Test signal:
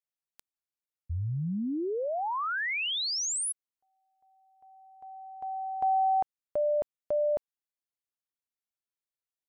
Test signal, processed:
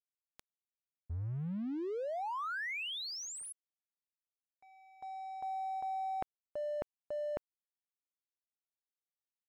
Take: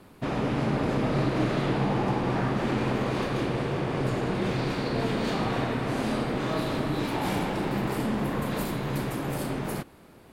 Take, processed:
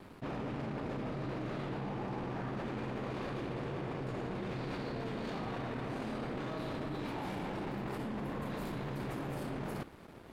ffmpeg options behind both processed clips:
-af "areverse,acompressor=threshold=-39dB:ratio=12:attack=3.8:release=52:knee=6:detection=peak,areverse,aeval=exprs='sgn(val(0))*max(abs(val(0))-0.00133,0)':c=same,aemphasis=mode=reproduction:type=cd,volume=3.5dB"

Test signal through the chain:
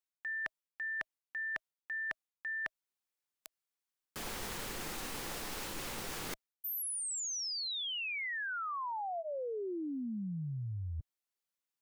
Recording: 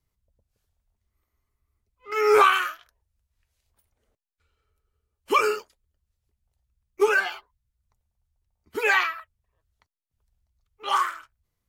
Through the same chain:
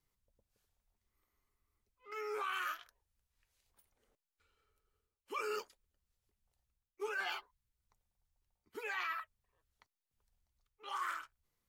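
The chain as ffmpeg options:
-af "equalizer=f=67:t=o:w=2.2:g=-10,bandreject=f=640:w=12,areverse,acompressor=threshold=-35dB:ratio=12,areverse,volume=-2dB"

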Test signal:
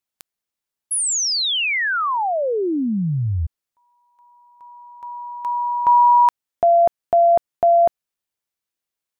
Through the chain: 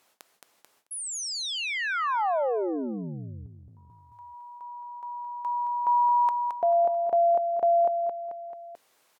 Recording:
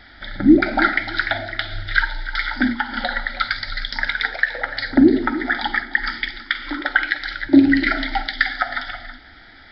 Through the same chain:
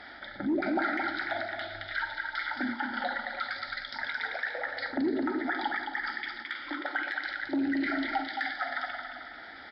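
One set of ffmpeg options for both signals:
-filter_complex "[0:a]aecho=1:1:219|438|657|876:0.376|0.124|0.0409|0.0135,asplit=2[a][b];[b]volume=7dB,asoftclip=hard,volume=-7dB,volume=-5.5dB[c];[a][c]amix=inputs=2:normalize=0,alimiter=limit=-9dB:level=0:latency=1:release=20,areverse,acompressor=mode=upward:threshold=-23dB:ratio=2.5:attack=2.2:release=67:knee=2.83:detection=peak,areverse,bandpass=f=680:t=q:w=0.77:csg=0,aemphasis=mode=production:type=75kf,volume=-9dB"

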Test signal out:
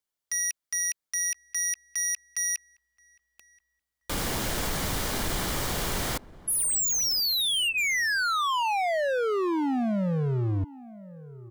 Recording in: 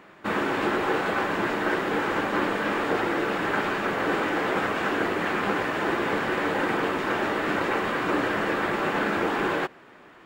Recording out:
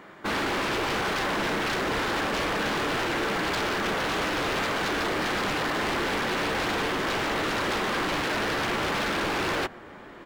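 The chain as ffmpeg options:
-filter_complex "[0:a]bandreject=f=2.6k:w=11,acontrast=62,aeval=exprs='0.112*(abs(mod(val(0)/0.112+3,4)-2)-1)':c=same,asplit=2[a][b];[b]adelay=1028,lowpass=f=800:p=1,volume=-18dB,asplit=2[c][d];[d]adelay=1028,lowpass=f=800:p=1,volume=0.41,asplit=2[e][f];[f]adelay=1028,lowpass=f=800:p=1,volume=0.41[g];[a][c][e][g]amix=inputs=4:normalize=0,volume=-3.5dB"

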